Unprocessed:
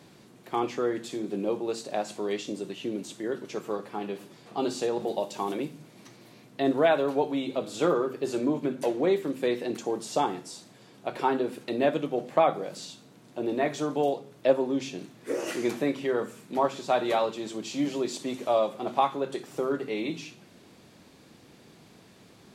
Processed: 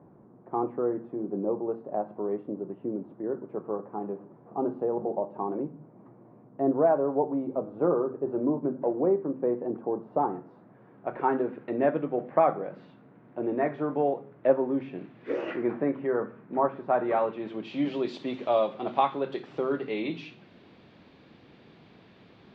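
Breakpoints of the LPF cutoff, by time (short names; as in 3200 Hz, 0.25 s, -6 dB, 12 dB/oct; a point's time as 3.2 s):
LPF 24 dB/oct
9.98 s 1100 Hz
11.3 s 1900 Hz
14.84 s 1900 Hz
15.36 s 3500 Hz
15.65 s 1700 Hz
16.97 s 1700 Hz
17.96 s 3700 Hz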